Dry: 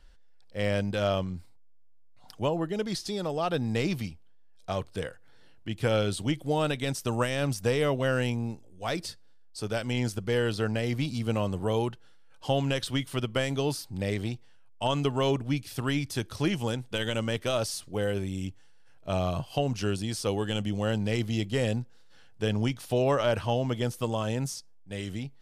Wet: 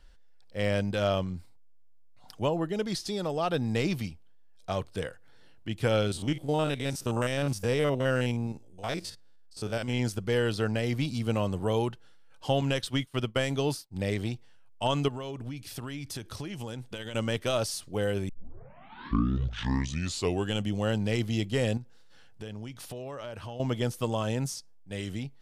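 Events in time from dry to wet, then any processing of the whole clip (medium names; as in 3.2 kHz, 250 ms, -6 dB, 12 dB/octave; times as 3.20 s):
6.07–9.99 s: spectrogram pixelated in time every 50 ms
12.61–13.96 s: expander -33 dBFS
15.08–17.15 s: compression 16:1, threshold -33 dBFS
18.29 s: tape start 2.25 s
21.77–23.60 s: compression, threshold -37 dBFS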